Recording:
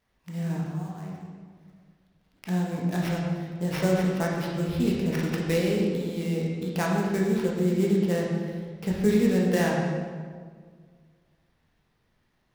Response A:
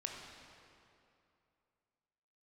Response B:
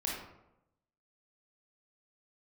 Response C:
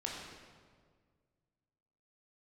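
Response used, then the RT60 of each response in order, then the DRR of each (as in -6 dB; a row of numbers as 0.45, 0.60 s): C; 2.7, 0.90, 1.8 s; 0.0, -4.0, -3.0 dB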